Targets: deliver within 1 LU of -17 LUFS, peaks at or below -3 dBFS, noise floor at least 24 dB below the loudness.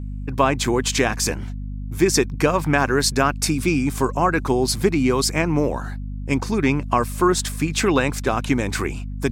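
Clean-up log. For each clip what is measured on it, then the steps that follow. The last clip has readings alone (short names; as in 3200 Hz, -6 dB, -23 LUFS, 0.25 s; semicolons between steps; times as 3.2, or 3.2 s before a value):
hum 50 Hz; harmonics up to 250 Hz; hum level -27 dBFS; loudness -20.5 LUFS; peak -3.5 dBFS; loudness target -17.0 LUFS
-> notches 50/100/150/200/250 Hz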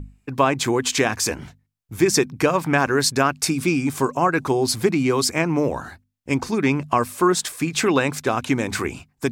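hum none; loudness -21.0 LUFS; peak -3.5 dBFS; loudness target -17.0 LUFS
-> gain +4 dB; limiter -3 dBFS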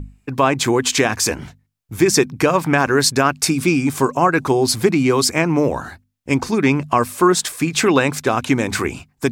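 loudness -17.5 LUFS; peak -3.0 dBFS; noise floor -65 dBFS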